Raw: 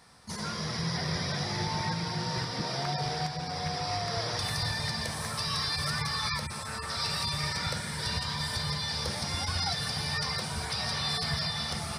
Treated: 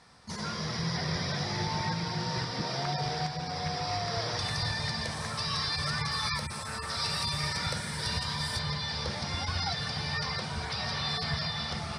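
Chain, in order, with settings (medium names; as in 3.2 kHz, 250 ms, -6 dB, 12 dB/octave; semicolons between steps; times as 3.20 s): low-pass 7.2 kHz 12 dB/octave, from 6.12 s 12 kHz, from 8.59 s 5 kHz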